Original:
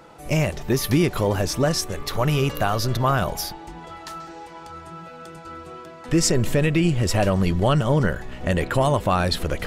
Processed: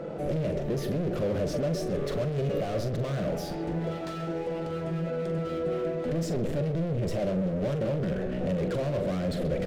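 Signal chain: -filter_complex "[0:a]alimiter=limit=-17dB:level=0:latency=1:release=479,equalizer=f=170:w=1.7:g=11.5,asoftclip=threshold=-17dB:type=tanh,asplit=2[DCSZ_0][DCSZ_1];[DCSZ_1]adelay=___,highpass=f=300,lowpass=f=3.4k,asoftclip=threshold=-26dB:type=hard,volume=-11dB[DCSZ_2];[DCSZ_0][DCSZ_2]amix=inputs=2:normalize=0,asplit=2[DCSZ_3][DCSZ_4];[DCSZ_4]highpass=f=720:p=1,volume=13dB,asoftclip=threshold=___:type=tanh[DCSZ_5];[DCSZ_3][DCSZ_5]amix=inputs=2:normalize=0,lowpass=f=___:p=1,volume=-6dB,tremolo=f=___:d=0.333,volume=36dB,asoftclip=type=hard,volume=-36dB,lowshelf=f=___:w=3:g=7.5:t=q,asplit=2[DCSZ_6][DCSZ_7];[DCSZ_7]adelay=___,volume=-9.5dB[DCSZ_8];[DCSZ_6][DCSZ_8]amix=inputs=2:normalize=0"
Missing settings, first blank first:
130, -16dB, 1.1k, 180, 710, 43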